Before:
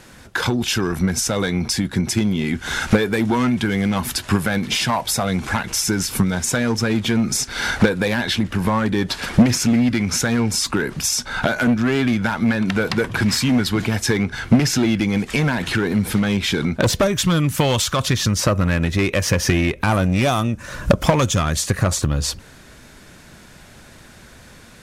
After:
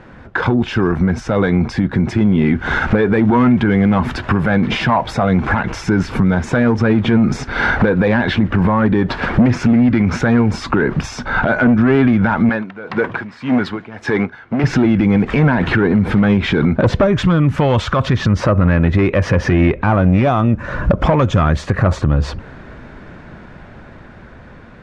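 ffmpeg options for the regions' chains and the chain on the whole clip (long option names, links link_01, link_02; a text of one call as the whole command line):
ffmpeg -i in.wav -filter_complex "[0:a]asettb=1/sr,asplit=3[link_01][link_02][link_03];[link_01]atrim=end=12.494[link_04];[link_02]atrim=start=12.49:end=14.64,asetpts=PTS-STARTPTS,afade=type=in:duration=0.004:curve=qsin,afade=type=out:start_time=2.146:duration=0.004:curve=qsin,highpass=frequency=400:poles=1,aeval=exprs='val(0)*pow(10,-20*(0.5-0.5*cos(2*PI*1.8*n/s))/20)':channel_layout=same[link_05];[link_03]atrim=start=14.636[link_06];[link_04][link_05]acrossfade=duration=0.004:curve1=hsin:curve2=qsin[link_07];[link_07][link_06]acrossfade=duration=0.004:curve1=qsin:curve2=hsin,lowpass=1600,dynaudnorm=framelen=540:gausssize=7:maxgain=11.5dB,alimiter=limit=-12dB:level=0:latency=1:release=79,volume=6.5dB" out.wav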